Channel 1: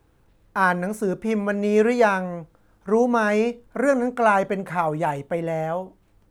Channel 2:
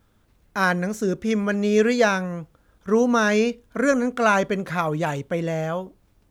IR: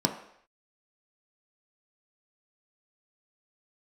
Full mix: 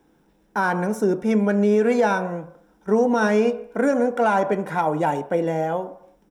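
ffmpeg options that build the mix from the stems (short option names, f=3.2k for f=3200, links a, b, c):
-filter_complex "[0:a]volume=-3dB,asplit=2[a][b];[b]volume=-11dB[c];[1:a]asoftclip=type=tanh:threshold=-16dB,adelay=2.1,volume=-8.5dB,asplit=2[d][e];[e]volume=-20dB[f];[2:a]atrim=start_sample=2205[g];[c][f]amix=inputs=2:normalize=0[h];[h][g]afir=irnorm=-1:irlink=0[i];[a][d][i]amix=inputs=3:normalize=0,lowshelf=f=74:g=-8.5,alimiter=limit=-10dB:level=0:latency=1:release=91"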